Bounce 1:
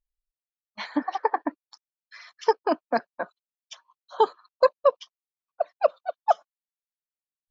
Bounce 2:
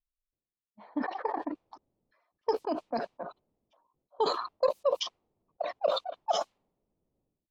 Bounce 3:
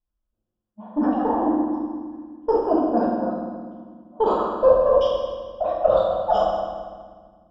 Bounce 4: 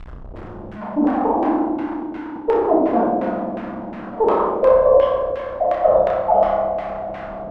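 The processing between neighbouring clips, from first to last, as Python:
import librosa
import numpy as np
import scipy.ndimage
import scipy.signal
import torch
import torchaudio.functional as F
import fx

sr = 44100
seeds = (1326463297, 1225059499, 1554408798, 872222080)

y1 = fx.env_lowpass(x, sr, base_hz=380.0, full_db=-19.0)
y1 = fx.peak_eq(y1, sr, hz=1600.0, db=-11.5, octaves=0.94)
y1 = fx.sustainer(y1, sr, db_per_s=58.0)
y1 = y1 * librosa.db_to_amplitude(-7.0)
y2 = fx.diode_clip(y1, sr, knee_db=-15.5)
y2 = scipy.signal.lfilter(np.full(21, 1.0 / 21), 1.0, y2)
y2 = fx.rev_fdn(y2, sr, rt60_s=1.6, lf_ratio=1.55, hf_ratio=0.85, size_ms=28.0, drr_db=-6.5)
y2 = y2 * librosa.db_to_amplitude(6.5)
y3 = y2 + 0.5 * 10.0 ** (-27.5 / 20.0) * np.sign(y2)
y3 = fx.filter_lfo_lowpass(y3, sr, shape='saw_down', hz=2.8, low_hz=600.0, high_hz=2200.0, q=1.3)
y3 = fx.room_flutter(y3, sr, wall_m=5.3, rt60_s=0.33)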